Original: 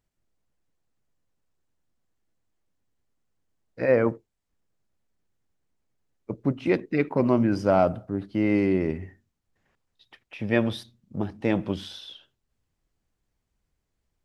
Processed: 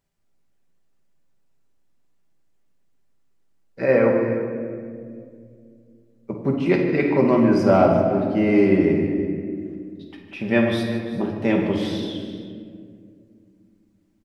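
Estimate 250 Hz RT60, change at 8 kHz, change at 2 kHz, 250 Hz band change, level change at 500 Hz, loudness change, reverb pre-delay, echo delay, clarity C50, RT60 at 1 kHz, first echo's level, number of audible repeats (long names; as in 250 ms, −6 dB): 3.4 s, can't be measured, +5.5 dB, +6.5 dB, +6.5 dB, +5.0 dB, 5 ms, 52 ms, 2.5 dB, 1.8 s, −10.5 dB, 4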